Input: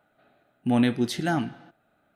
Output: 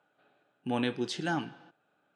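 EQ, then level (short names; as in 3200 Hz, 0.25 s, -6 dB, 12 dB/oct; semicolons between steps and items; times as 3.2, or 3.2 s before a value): speaker cabinet 220–7300 Hz, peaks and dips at 230 Hz -10 dB, 340 Hz -4 dB, 660 Hz -10 dB, 2000 Hz -9 dB, 4000 Hz -5 dB, 6000 Hz -4 dB; bell 1300 Hz -6 dB 0.21 oct; 0.0 dB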